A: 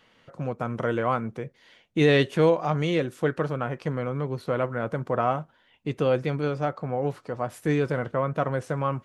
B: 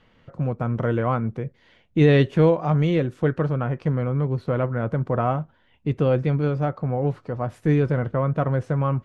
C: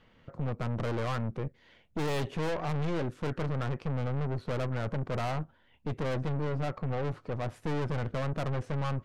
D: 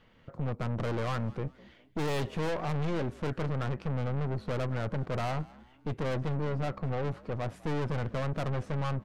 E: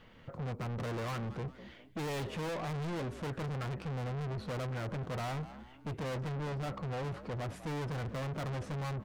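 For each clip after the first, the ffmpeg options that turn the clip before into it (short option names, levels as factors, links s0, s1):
-af "aemphasis=mode=reproduction:type=bsi"
-af "aeval=exprs='(tanh(31.6*val(0)+0.65)-tanh(0.65))/31.6':c=same"
-filter_complex "[0:a]asplit=4[s0][s1][s2][s3];[s1]adelay=203,afreqshift=64,volume=0.0794[s4];[s2]adelay=406,afreqshift=128,volume=0.0295[s5];[s3]adelay=609,afreqshift=192,volume=0.0108[s6];[s0][s4][s5][s6]amix=inputs=4:normalize=0"
-af "asoftclip=type=tanh:threshold=0.0112,volume=1.58"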